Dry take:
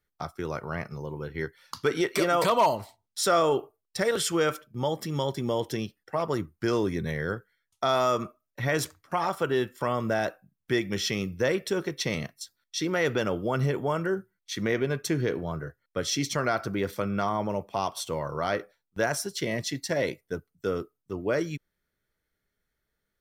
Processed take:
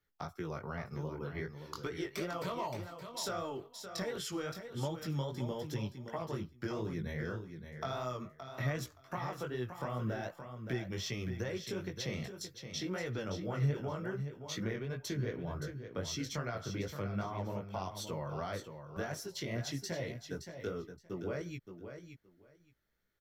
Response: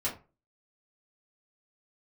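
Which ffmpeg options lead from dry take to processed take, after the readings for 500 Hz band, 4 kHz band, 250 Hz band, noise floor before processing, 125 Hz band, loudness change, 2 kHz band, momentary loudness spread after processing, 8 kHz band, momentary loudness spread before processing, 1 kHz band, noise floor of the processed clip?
-12.5 dB, -10.0 dB, -9.5 dB, -83 dBFS, -4.5 dB, -11.0 dB, -12.0 dB, 6 LU, -11.0 dB, 11 LU, -13.5 dB, -66 dBFS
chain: -filter_complex "[0:a]equalizer=f=9.1k:w=6:g=-14.5,acrossover=split=130[a][b];[b]acompressor=threshold=-37dB:ratio=4[c];[a][c]amix=inputs=2:normalize=0,flanger=delay=16:depth=6.2:speed=2.6,asplit=2[d][e];[e]aecho=0:1:571|1142:0.355|0.0568[f];[d][f]amix=inputs=2:normalize=0,volume=1dB"

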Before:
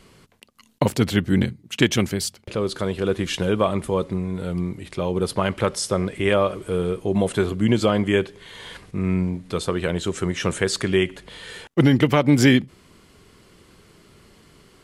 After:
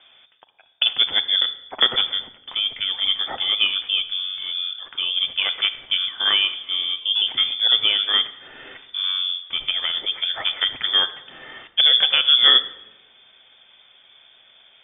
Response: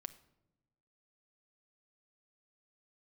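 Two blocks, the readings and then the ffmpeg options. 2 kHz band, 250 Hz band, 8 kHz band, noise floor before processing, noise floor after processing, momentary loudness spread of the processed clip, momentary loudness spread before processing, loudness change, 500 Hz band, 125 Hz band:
+1.5 dB, under -25 dB, under -40 dB, -54 dBFS, -54 dBFS, 11 LU, 10 LU, +3.5 dB, -18.5 dB, under -30 dB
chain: -filter_complex "[0:a]lowpass=f=3.1k:t=q:w=0.5098,lowpass=f=3.1k:t=q:w=0.6013,lowpass=f=3.1k:t=q:w=0.9,lowpass=f=3.1k:t=q:w=2.563,afreqshift=-3600[a];[1:a]atrim=start_sample=2205,asetrate=32634,aresample=44100[b];[a][b]afir=irnorm=-1:irlink=0,volume=2.5dB"

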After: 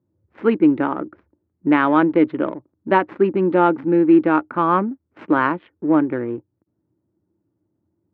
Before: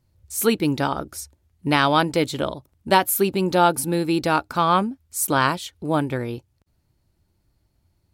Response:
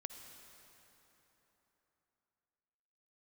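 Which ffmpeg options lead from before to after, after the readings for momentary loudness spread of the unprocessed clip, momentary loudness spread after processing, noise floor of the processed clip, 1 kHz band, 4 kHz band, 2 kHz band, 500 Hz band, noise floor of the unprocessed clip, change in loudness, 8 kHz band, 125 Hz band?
13 LU, 13 LU, -74 dBFS, +0.5 dB, under -10 dB, 0.0 dB, +3.5 dB, -69 dBFS, +3.0 dB, under -40 dB, -3.0 dB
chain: -af "adynamicsmooth=sensitivity=4:basefreq=870,highpass=f=120:w=0.5412,highpass=f=120:w=1.3066,equalizer=f=140:t=q:w=4:g=-8,equalizer=f=320:t=q:w=4:g=10,equalizer=f=730:t=q:w=4:g=-5,lowpass=f=2.1k:w=0.5412,lowpass=f=2.1k:w=1.3066,volume=1.5dB"

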